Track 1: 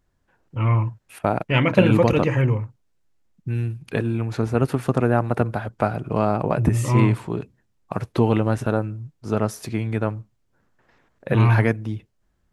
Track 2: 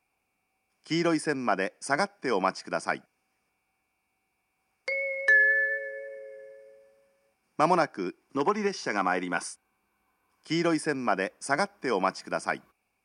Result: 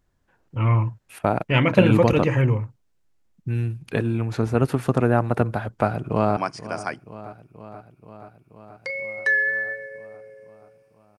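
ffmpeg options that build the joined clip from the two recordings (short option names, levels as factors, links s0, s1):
-filter_complex "[0:a]apad=whole_dur=11.18,atrim=end=11.18,atrim=end=6.372[s0];[1:a]atrim=start=2.388:end=7.2[s1];[s0][s1]acrossfade=d=0.004:c1=hsin:c2=hsin,asplit=2[s2][s3];[s3]afade=t=in:st=5.74:d=0.01,afade=t=out:st=6.37:d=0.01,aecho=0:1:480|960|1440|1920|2400|2880|3360|3840|4320|4800:0.16788|0.12591|0.0944327|0.0708245|0.0531184|0.0398388|0.0298791|0.0224093|0.016807|0.0126052[s4];[s2][s4]amix=inputs=2:normalize=0"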